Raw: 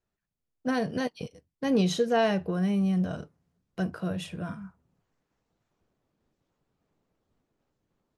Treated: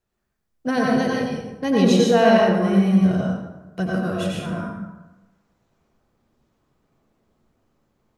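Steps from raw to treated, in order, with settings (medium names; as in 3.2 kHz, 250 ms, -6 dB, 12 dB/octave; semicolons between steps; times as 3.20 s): plate-style reverb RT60 1.1 s, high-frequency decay 0.55×, pre-delay 80 ms, DRR -3.5 dB; trim +4.5 dB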